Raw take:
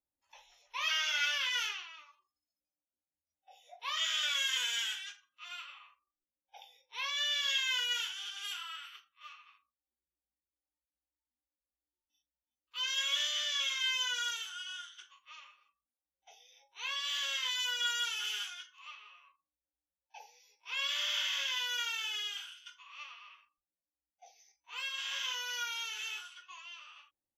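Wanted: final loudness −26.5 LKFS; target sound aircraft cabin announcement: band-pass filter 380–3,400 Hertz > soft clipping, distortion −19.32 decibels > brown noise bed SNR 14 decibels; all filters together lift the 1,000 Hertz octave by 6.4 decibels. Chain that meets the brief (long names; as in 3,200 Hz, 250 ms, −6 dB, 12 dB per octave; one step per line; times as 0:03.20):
band-pass filter 380–3,400 Hz
parametric band 1,000 Hz +8.5 dB
soft clipping −26.5 dBFS
brown noise bed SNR 14 dB
level +9 dB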